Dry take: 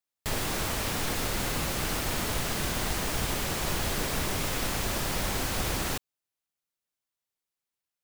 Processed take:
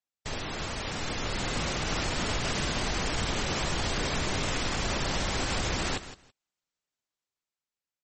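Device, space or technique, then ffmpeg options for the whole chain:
low-bitrate web radio: -filter_complex "[0:a]asplit=3[s0][s1][s2];[s0]afade=t=out:st=3.94:d=0.02[s3];[s1]bandreject=f=422:t=h:w=4,bandreject=f=844:t=h:w=4,bandreject=f=1266:t=h:w=4,bandreject=f=1688:t=h:w=4,bandreject=f=2110:t=h:w=4,bandreject=f=2532:t=h:w=4,bandreject=f=2954:t=h:w=4,bandreject=f=3376:t=h:w=4,afade=t=in:st=3.94:d=0.02,afade=t=out:st=5.23:d=0.02[s4];[s2]afade=t=in:st=5.23:d=0.02[s5];[s3][s4][s5]amix=inputs=3:normalize=0,aecho=1:1:164|328:0.188|0.032,dynaudnorm=f=270:g=11:m=2.11,alimiter=limit=0.188:level=0:latency=1:release=56,volume=0.631" -ar 44100 -c:a libmp3lame -b:a 32k

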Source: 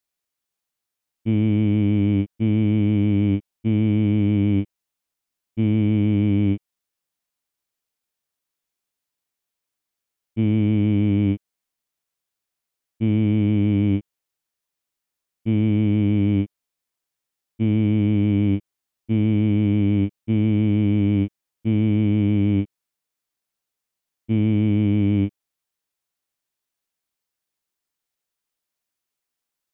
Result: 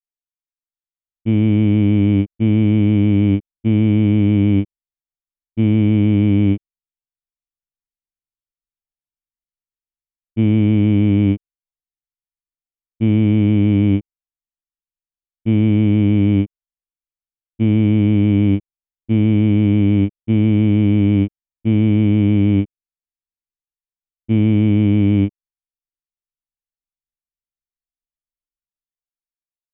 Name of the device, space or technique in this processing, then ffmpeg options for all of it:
voice memo with heavy noise removal: -af "anlmdn=0.1,dynaudnorm=f=170:g=11:m=3.76,volume=0.668"

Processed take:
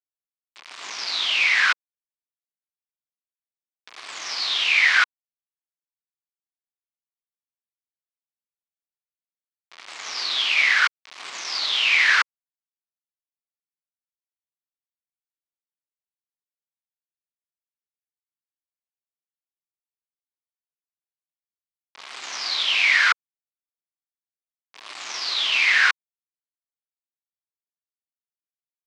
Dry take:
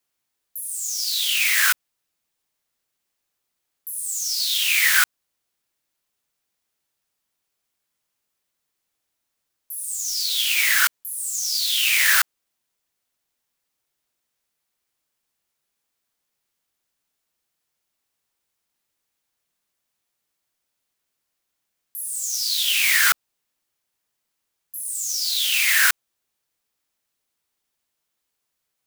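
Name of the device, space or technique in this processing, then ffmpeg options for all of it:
hand-held game console: -af "acrusher=bits=3:mix=0:aa=0.000001,highpass=470,equalizer=f=510:t=q:w=4:g=-6,equalizer=f=1100:t=q:w=4:g=5,equalizer=f=2200:t=q:w=4:g=4,lowpass=f=4700:w=0.5412,lowpass=f=4700:w=1.3066"

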